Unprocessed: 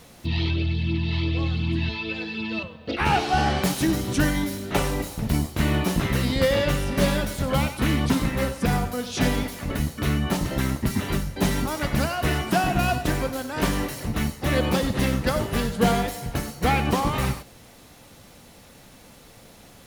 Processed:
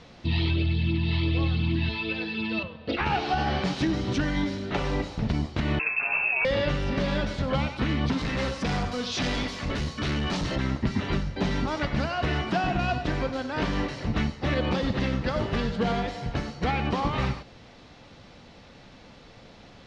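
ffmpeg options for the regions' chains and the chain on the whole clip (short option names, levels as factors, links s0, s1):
-filter_complex "[0:a]asettb=1/sr,asplit=3[s0][s1][s2];[s0]atrim=end=5.794[s3];[s1]atrim=start=5.79:end=6.45,asetpts=PTS-STARTPTS,afade=t=in:d=0.004:c=qsin,afade=t=out:st=0.656:d=0.004:c=qsin,highpass=f=100:w=0.5412,highpass=f=100:w=1.3066,equalizer=f=820:t=o:w=0.73:g=-6.5,lowpass=f=2400:t=q:w=0.5098,lowpass=f=2400:t=q:w=0.6013,lowpass=f=2400:t=q:w=0.9,lowpass=f=2400:t=q:w=2.563,afreqshift=-2800[s4];[s2]atrim=start=6.446[s5];[s3][s4]acrossfade=d=0.004:c1=hsin:c2=qsin[s6];[s6][s5]acrossfade=d=0.004:c1=qsin:c2=hsin,asettb=1/sr,asplit=3[s7][s8][s9];[s7]atrim=end=8.184[s10];[s8]atrim=start=8.18:end=10.56,asetpts=PTS-STARTPTS,afade=t=in:d=0.004:c=qsin,afade=t=out:st=2.376:d=0.004:c=qsin,highshelf=f=3600:g=11.5,aeval=exprs='val(0)+0.00447*sin(2*PI*1100*n/s)':c=same,asoftclip=type=hard:threshold=0.0631[s11];[s9]atrim=start=10.556[s12];[s10][s11]acrossfade=d=0.004:c1=hsin:c2=qsin[s13];[s13][s12]acrossfade=d=0.004:c1=qsin:c2=hsin,lowpass=f=5000:w=0.5412,lowpass=f=5000:w=1.3066,alimiter=limit=0.158:level=0:latency=1:release=194"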